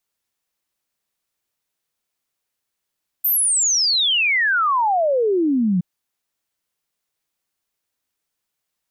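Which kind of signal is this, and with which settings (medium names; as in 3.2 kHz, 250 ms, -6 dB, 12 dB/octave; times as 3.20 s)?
log sweep 14 kHz -> 170 Hz 2.57 s -15 dBFS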